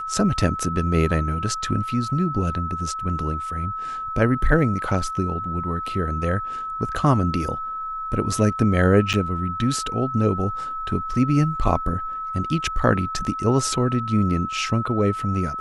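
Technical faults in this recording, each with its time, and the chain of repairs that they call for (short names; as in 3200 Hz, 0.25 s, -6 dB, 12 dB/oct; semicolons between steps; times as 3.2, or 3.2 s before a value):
tone 1300 Hz -27 dBFS
9.13–9.14 gap 7.8 ms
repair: notch 1300 Hz, Q 30; interpolate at 9.13, 7.8 ms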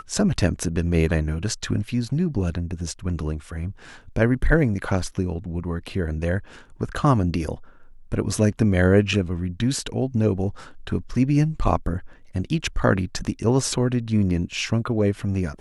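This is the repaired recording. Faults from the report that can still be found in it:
none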